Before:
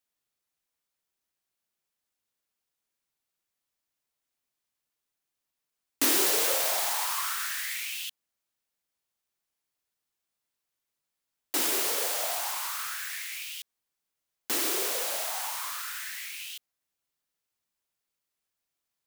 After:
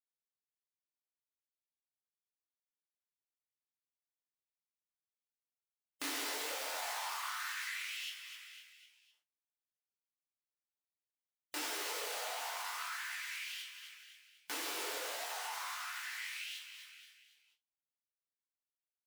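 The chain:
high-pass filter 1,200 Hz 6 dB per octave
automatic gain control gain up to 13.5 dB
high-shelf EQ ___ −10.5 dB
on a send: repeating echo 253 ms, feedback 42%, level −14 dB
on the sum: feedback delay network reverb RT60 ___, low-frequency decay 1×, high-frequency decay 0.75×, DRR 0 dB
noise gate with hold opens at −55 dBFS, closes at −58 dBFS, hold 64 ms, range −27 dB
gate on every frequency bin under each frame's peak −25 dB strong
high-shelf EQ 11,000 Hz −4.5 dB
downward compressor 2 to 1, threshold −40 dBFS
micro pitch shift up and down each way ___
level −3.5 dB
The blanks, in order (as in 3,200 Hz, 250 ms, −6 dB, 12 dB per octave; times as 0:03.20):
4,100 Hz, 0.67 s, 50 cents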